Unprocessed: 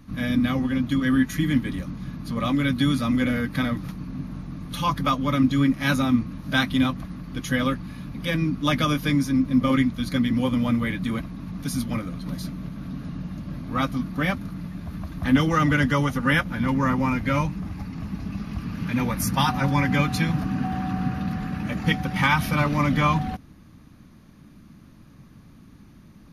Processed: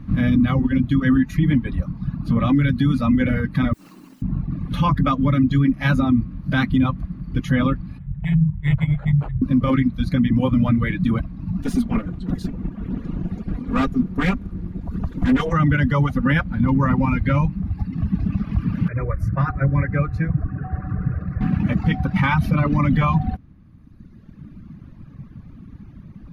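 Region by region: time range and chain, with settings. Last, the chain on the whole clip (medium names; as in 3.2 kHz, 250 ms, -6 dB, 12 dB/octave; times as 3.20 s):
3.73–4.22 s: high-pass 280 Hz 24 dB/octave + compressor with a negative ratio -44 dBFS, ratio -0.5 + word length cut 8-bit, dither triangular
7.98–9.42 s: brick-wall FIR band-stop 190–2800 Hz + hum notches 60/120/180/240/300/360/420/480 Hz + decimation joined by straight lines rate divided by 8×
11.62–15.53 s: comb filter that takes the minimum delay 4.2 ms + peaking EQ 7.6 kHz +9.5 dB 0.48 oct
18.88–21.41 s: low-pass 1.4 kHz 6 dB/octave + static phaser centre 860 Hz, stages 6
whole clip: reverb removal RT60 1.6 s; tone controls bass +10 dB, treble -15 dB; peak limiter -14 dBFS; trim +4.5 dB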